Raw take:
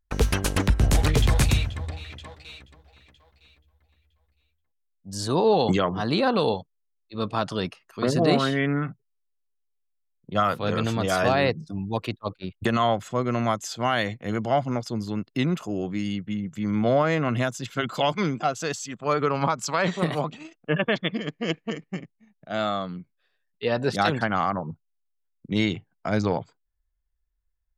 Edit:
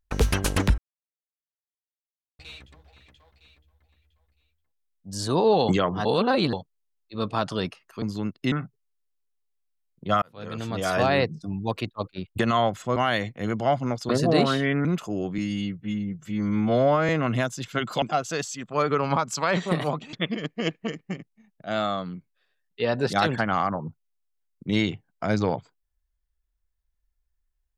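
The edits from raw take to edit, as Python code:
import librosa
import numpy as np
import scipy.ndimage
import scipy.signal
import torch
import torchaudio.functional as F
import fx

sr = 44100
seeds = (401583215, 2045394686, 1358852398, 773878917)

y = fx.edit(x, sr, fx.silence(start_s=0.78, length_s=1.61),
    fx.reverse_span(start_s=6.05, length_s=0.48),
    fx.swap(start_s=8.02, length_s=0.76, other_s=14.94, other_length_s=0.5),
    fx.fade_in_span(start_s=10.48, length_s=0.86),
    fx.cut(start_s=13.22, length_s=0.59),
    fx.stretch_span(start_s=15.97, length_s=1.14, factor=1.5),
    fx.cut(start_s=18.04, length_s=0.29),
    fx.cut(start_s=20.44, length_s=0.52), tone=tone)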